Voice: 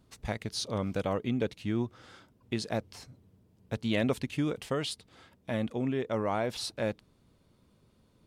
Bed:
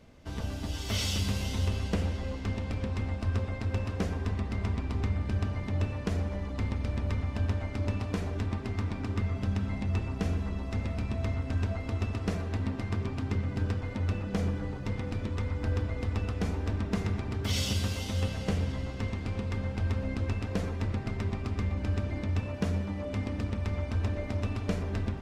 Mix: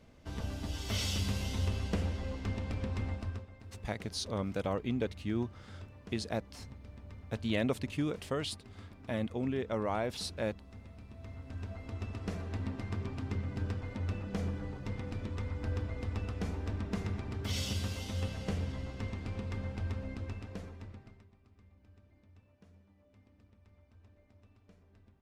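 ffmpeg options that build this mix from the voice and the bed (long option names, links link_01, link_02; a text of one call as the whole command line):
ffmpeg -i stem1.wav -i stem2.wav -filter_complex "[0:a]adelay=3600,volume=-3dB[link_01];[1:a]volume=9.5dB,afade=type=out:start_time=3.09:duration=0.37:silence=0.177828,afade=type=in:start_time=11.12:duration=1.45:silence=0.223872,afade=type=out:start_time=19.65:duration=1.62:silence=0.0530884[link_02];[link_01][link_02]amix=inputs=2:normalize=0" out.wav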